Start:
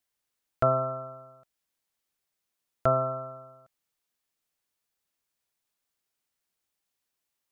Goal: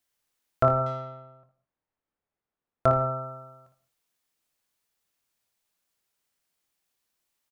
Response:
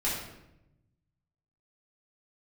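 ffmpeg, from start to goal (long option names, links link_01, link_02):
-filter_complex "[0:a]aecho=1:1:24|57|79:0.299|0.398|0.211,asplit=2[link_01][link_02];[1:a]atrim=start_sample=2205,afade=type=out:start_time=0.15:duration=0.01,atrim=end_sample=7056,adelay=88[link_03];[link_02][link_03]afir=irnorm=-1:irlink=0,volume=-22dB[link_04];[link_01][link_04]amix=inputs=2:normalize=0,asettb=1/sr,asplit=3[link_05][link_06][link_07];[link_05]atrim=end=0.864[link_08];[link_06]atrim=start=0.86:end=2.86,asetpts=PTS-STARTPTS,afade=type=in:duration=0.004:curve=qsin,afade=type=out:start_time=1.996:duration=0.004:curve=qsin,adynamicsmooth=sensitivity=8:basefreq=1500[link_09];[link_07]atrim=start=2.856[link_10];[link_08][link_09]acrossfade=duration=0.004:curve1=hsin:curve2=qsin[link_11];[link_11][link_10]acrossfade=duration=0.004:curve1=qsin:curve2=hsin,volume=2.5dB"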